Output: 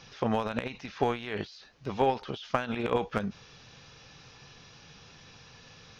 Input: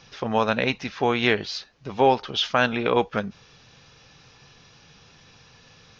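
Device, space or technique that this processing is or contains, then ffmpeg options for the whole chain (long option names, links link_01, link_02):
de-esser from a sidechain: -filter_complex "[0:a]asplit=2[link_01][link_02];[link_02]highpass=frequency=4400:width=0.5412,highpass=frequency=4400:width=1.3066,apad=whole_len=264476[link_03];[link_01][link_03]sidechaincompress=threshold=-52dB:ratio=5:attack=0.62:release=35"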